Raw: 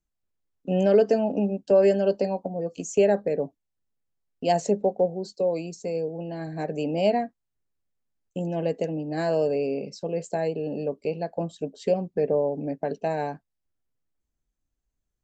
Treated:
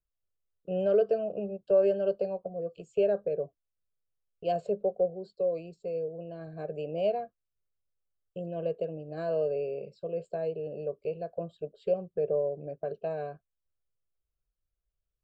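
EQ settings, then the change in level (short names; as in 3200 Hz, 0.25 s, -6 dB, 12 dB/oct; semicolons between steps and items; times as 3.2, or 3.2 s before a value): high shelf 2700 Hz -12 dB; fixed phaser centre 1300 Hz, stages 8; -3.5 dB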